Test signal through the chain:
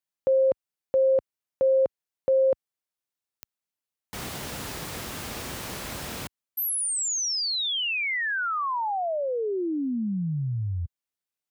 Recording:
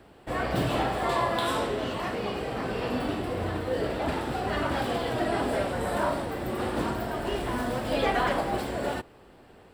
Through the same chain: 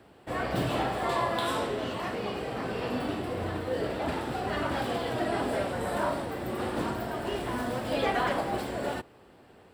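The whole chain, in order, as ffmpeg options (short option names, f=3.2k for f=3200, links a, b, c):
-af "highpass=65,volume=-2dB"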